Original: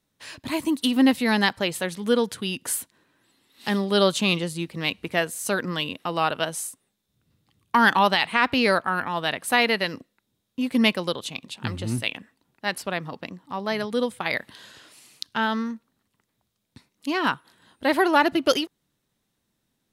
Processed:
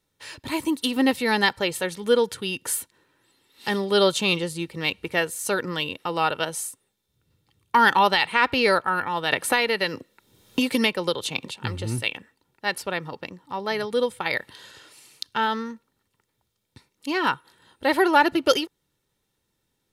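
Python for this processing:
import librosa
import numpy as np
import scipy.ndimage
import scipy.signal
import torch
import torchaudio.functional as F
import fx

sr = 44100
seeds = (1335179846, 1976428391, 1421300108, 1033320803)

y = x + 0.43 * np.pad(x, (int(2.2 * sr / 1000.0), 0))[:len(x)]
y = fx.band_squash(y, sr, depth_pct=100, at=(9.32, 11.51))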